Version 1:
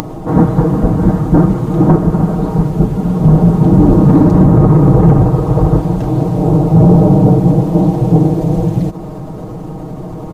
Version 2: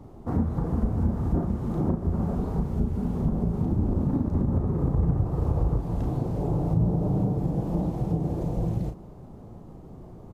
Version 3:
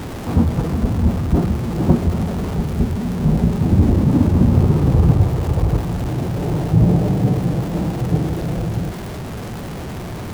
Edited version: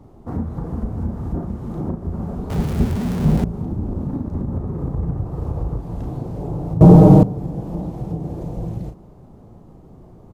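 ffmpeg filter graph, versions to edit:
-filter_complex "[1:a]asplit=3[a][b][c];[a]atrim=end=2.502[d];[2:a]atrim=start=2.498:end=3.442[e];[b]atrim=start=3.438:end=6.812[f];[0:a]atrim=start=6.808:end=7.232[g];[c]atrim=start=7.228[h];[d][e]acrossfade=d=0.004:c1=hsin:c2=hsin[i];[i][f]acrossfade=d=0.004:c1=hsin:c2=hsin[j];[j][g]acrossfade=d=0.004:c1=hsin:c2=hsin[k];[k][h]acrossfade=d=0.004:c1=hsin:c2=hsin"

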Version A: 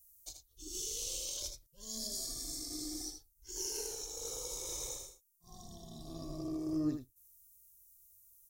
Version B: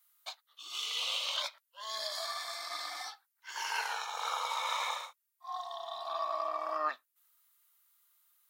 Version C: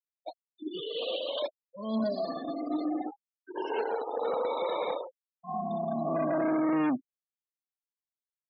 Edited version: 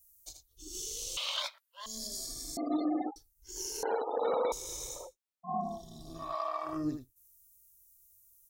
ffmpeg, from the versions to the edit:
-filter_complex "[1:a]asplit=2[a][b];[2:a]asplit=3[c][d][e];[0:a]asplit=6[f][g][h][i][j][k];[f]atrim=end=1.172[l];[a]atrim=start=1.168:end=1.862[m];[g]atrim=start=1.858:end=2.572[n];[c]atrim=start=2.568:end=3.162[o];[h]atrim=start=3.158:end=3.832[p];[d]atrim=start=3.828:end=4.522[q];[i]atrim=start=4.518:end=5.17[r];[e]atrim=start=4.93:end=5.83[s];[j]atrim=start=5.59:end=6.37[t];[b]atrim=start=6.13:end=6.85[u];[k]atrim=start=6.61[v];[l][m]acrossfade=d=0.004:c1=hsin:c2=hsin[w];[w][n]acrossfade=d=0.004:c1=hsin:c2=hsin[x];[x][o]acrossfade=d=0.004:c1=hsin:c2=hsin[y];[y][p]acrossfade=d=0.004:c1=hsin:c2=hsin[z];[z][q]acrossfade=d=0.004:c1=hsin:c2=hsin[aa];[aa][r]acrossfade=d=0.004:c1=hsin:c2=hsin[ab];[ab][s]acrossfade=d=0.24:c1=tri:c2=tri[ac];[ac][t]acrossfade=d=0.24:c1=tri:c2=tri[ad];[ad][u]acrossfade=d=0.24:c1=tri:c2=tri[ae];[ae][v]acrossfade=d=0.24:c1=tri:c2=tri"

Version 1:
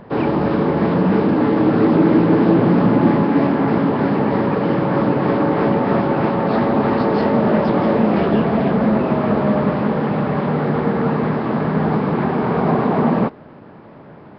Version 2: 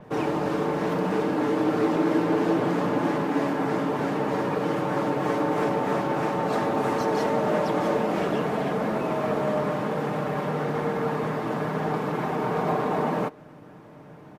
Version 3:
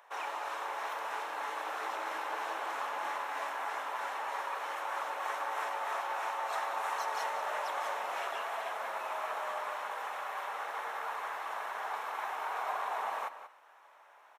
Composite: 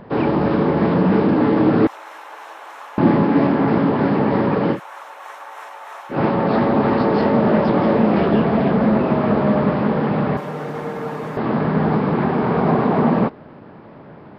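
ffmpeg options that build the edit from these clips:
-filter_complex "[2:a]asplit=2[a][b];[0:a]asplit=4[c][d][e][f];[c]atrim=end=1.872[g];[a]atrim=start=1.868:end=2.982[h];[d]atrim=start=2.978:end=4.8[i];[b]atrim=start=4.7:end=6.19[j];[e]atrim=start=6.09:end=10.372[k];[1:a]atrim=start=10.368:end=11.372[l];[f]atrim=start=11.368[m];[g][h]acrossfade=d=0.004:c1=hsin:c2=hsin[n];[n][i]acrossfade=d=0.004:c1=hsin:c2=hsin[o];[o][j]acrossfade=d=0.1:c1=tri:c2=tri[p];[p][k]acrossfade=d=0.1:c1=tri:c2=tri[q];[q][l]acrossfade=d=0.004:c1=hsin:c2=hsin[r];[r][m]acrossfade=d=0.004:c1=hsin:c2=hsin"

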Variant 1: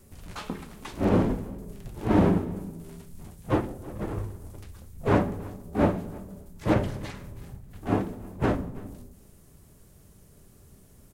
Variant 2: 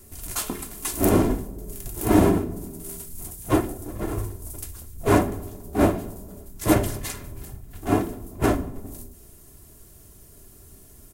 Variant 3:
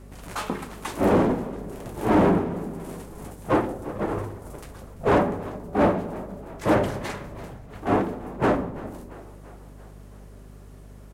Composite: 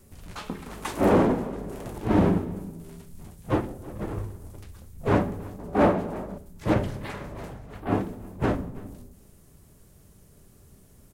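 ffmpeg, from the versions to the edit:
-filter_complex "[2:a]asplit=3[a][b][c];[0:a]asplit=4[d][e][f][g];[d]atrim=end=0.662[h];[a]atrim=start=0.658:end=1.982[i];[e]atrim=start=1.978:end=5.592[j];[b]atrim=start=5.588:end=6.382[k];[f]atrim=start=6.378:end=7.22[l];[c]atrim=start=6.98:end=7.96[m];[g]atrim=start=7.72[n];[h][i]acrossfade=d=0.004:c1=hsin:c2=hsin[o];[o][j]acrossfade=d=0.004:c1=hsin:c2=hsin[p];[p][k]acrossfade=d=0.004:c1=hsin:c2=hsin[q];[q][l]acrossfade=d=0.004:c1=hsin:c2=hsin[r];[r][m]acrossfade=d=0.24:c1=tri:c2=tri[s];[s][n]acrossfade=d=0.24:c1=tri:c2=tri"

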